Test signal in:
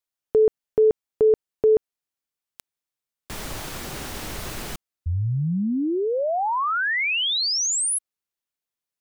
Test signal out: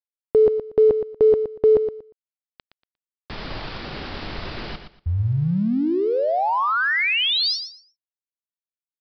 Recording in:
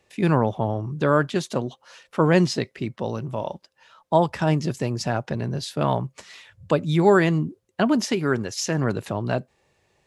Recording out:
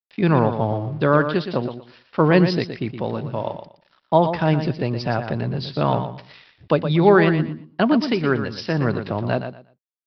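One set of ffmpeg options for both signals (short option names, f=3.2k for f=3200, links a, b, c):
-af "aresample=11025,aeval=exprs='sgn(val(0))*max(abs(val(0))-0.00316,0)':c=same,aresample=44100,aecho=1:1:118|236|354:0.355|0.0745|0.0156,volume=2.5dB"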